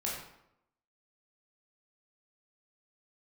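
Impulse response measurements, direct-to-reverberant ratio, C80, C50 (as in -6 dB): -5.0 dB, 5.0 dB, 2.0 dB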